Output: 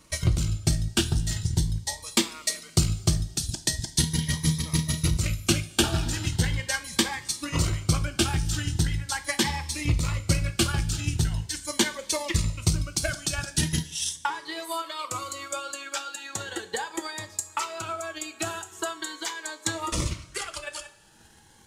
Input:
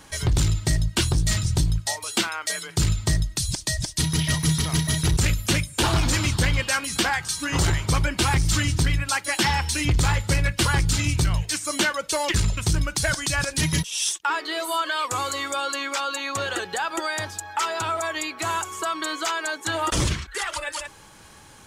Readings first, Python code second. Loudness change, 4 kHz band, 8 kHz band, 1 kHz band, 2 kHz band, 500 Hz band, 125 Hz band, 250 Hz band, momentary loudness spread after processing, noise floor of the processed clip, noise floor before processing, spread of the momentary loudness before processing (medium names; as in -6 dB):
-4.0 dB, -3.5 dB, -2.5 dB, -7.5 dB, -7.0 dB, -4.5 dB, -3.5 dB, -2.0 dB, 8 LU, -51 dBFS, -47 dBFS, 5 LU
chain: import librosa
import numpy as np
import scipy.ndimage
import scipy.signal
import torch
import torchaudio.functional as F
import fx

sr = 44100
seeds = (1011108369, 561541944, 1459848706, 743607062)

y = fx.transient(x, sr, attack_db=11, sustain_db=-5)
y = fx.rev_double_slope(y, sr, seeds[0], early_s=0.31, late_s=1.8, knee_db=-17, drr_db=8.0)
y = fx.notch_cascade(y, sr, direction='rising', hz=0.4)
y = F.gain(torch.from_numpy(y), -7.5).numpy()